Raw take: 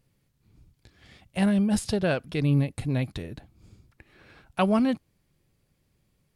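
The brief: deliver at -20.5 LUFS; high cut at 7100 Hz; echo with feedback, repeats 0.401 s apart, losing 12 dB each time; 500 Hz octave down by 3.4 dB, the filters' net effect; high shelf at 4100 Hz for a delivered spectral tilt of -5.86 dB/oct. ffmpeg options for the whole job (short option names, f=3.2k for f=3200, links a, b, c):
-af "lowpass=7.1k,equalizer=f=500:t=o:g=-4.5,highshelf=f=4.1k:g=8,aecho=1:1:401|802|1203:0.251|0.0628|0.0157,volume=6.5dB"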